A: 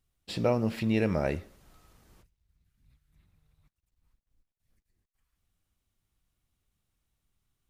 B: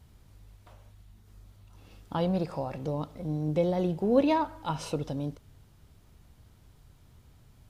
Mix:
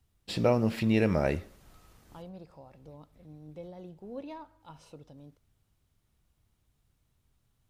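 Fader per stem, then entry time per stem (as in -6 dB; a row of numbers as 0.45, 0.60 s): +1.5, -18.0 dB; 0.00, 0.00 s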